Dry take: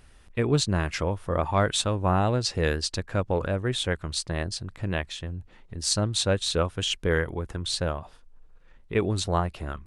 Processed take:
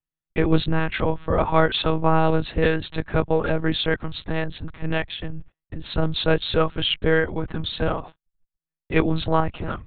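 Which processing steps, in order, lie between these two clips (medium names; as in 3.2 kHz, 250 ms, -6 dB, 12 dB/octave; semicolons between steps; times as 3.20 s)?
gate -43 dBFS, range -46 dB; monotone LPC vocoder at 8 kHz 160 Hz; trim +5.5 dB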